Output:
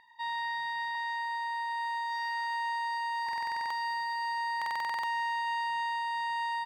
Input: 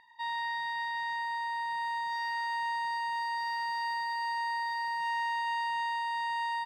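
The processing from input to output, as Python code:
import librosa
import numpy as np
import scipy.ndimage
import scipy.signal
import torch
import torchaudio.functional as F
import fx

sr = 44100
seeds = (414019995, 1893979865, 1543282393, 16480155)

y = fx.highpass(x, sr, hz=460.0, slope=24, at=(0.95, 3.27))
y = fx.buffer_glitch(y, sr, at_s=(3.24, 4.57), block=2048, repeats=9)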